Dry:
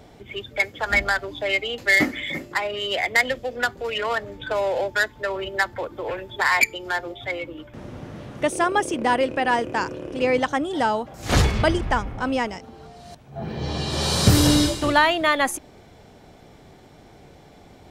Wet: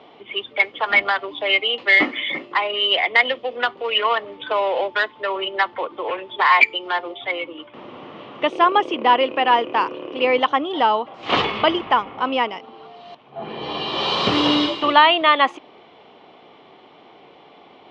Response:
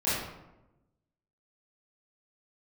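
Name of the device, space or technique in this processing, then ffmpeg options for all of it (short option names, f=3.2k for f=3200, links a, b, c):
phone earpiece: -af "highpass=360,equalizer=f=590:t=q:w=4:g=-3,equalizer=f=1.1k:t=q:w=4:g=7,equalizer=f=1.6k:t=q:w=4:g=-8,equalizer=f=3k:t=q:w=4:g=7,lowpass=f=3.5k:w=0.5412,lowpass=f=3.5k:w=1.3066,volume=4.5dB"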